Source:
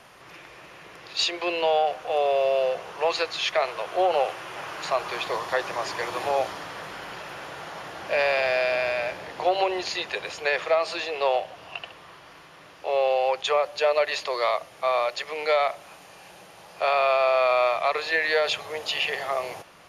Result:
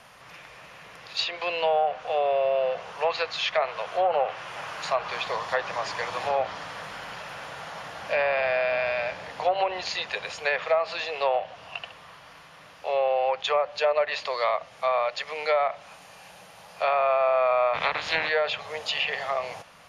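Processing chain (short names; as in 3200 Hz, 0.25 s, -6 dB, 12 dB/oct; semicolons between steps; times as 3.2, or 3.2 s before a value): 17.73–18.28 spectral limiter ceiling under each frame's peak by 23 dB; bell 350 Hz -13.5 dB 0.4 oct; treble ducked by the level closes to 1800 Hz, closed at -18.5 dBFS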